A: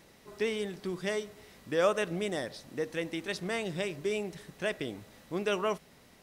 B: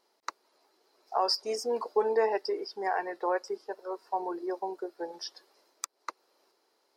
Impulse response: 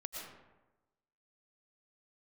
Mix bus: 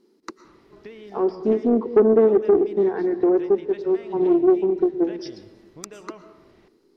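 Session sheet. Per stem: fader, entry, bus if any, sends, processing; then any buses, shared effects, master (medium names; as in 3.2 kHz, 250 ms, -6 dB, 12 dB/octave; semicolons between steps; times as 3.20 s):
+1.0 dB, 0.45 s, send -13 dB, Gaussian low-pass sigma 1.8 samples; compression, threshold -35 dBFS, peak gain reduction 13 dB; auto duck -9 dB, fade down 1.20 s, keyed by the second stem
-2.0 dB, 0.00 s, send -7.5 dB, resonant low shelf 490 Hz +9.5 dB, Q 3; low-pass that closes with the level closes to 1.1 kHz, closed at -20 dBFS; peaking EQ 210 Hz +12 dB 0.95 oct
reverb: on, RT60 1.1 s, pre-delay 75 ms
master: bass shelf 160 Hz +6.5 dB; saturation -6.5 dBFS, distortion -21 dB; loudspeaker Doppler distortion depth 0.2 ms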